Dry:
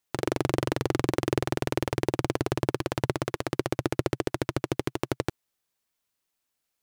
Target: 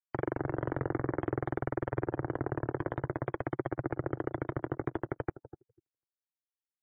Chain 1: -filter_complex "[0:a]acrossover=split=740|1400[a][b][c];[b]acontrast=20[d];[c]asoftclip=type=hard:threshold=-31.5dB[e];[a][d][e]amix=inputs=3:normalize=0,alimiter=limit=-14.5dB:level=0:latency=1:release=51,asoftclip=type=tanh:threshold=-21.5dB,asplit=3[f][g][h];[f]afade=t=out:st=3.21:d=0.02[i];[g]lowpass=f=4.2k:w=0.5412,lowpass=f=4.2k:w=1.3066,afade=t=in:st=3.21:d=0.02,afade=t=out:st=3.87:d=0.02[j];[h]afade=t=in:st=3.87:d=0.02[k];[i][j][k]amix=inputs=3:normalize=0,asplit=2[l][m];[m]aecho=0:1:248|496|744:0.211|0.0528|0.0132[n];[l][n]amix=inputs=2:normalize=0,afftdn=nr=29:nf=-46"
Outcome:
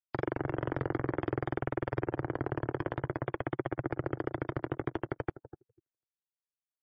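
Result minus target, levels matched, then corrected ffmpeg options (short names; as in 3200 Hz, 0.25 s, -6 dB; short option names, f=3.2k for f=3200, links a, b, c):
hard clip: distortion -5 dB
-filter_complex "[0:a]acrossover=split=740|1400[a][b][c];[b]acontrast=20[d];[c]asoftclip=type=hard:threshold=-42dB[e];[a][d][e]amix=inputs=3:normalize=0,alimiter=limit=-14.5dB:level=0:latency=1:release=51,asoftclip=type=tanh:threshold=-21.5dB,asplit=3[f][g][h];[f]afade=t=out:st=3.21:d=0.02[i];[g]lowpass=f=4.2k:w=0.5412,lowpass=f=4.2k:w=1.3066,afade=t=in:st=3.21:d=0.02,afade=t=out:st=3.87:d=0.02[j];[h]afade=t=in:st=3.87:d=0.02[k];[i][j][k]amix=inputs=3:normalize=0,asplit=2[l][m];[m]aecho=0:1:248|496|744:0.211|0.0528|0.0132[n];[l][n]amix=inputs=2:normalize=0,afftdn=nr=29:nf=-46"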